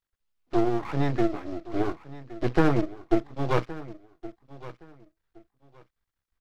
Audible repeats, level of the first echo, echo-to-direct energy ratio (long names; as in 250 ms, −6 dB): 2, −17.0 dB, −17.0 dB